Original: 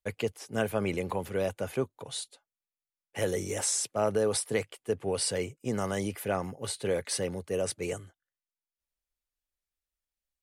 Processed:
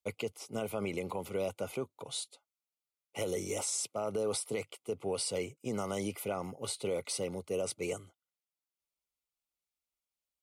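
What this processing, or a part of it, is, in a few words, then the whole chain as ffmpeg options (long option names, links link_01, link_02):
PA system with an anti-feedback notch: -af "highpass=frequency=150:poles=1,asuperstop=centerf=1700:order=8:qfactor=3.3,alimiter=limit=-23.5dB:level=0:latency=1:release=76,volume=-1.5dB"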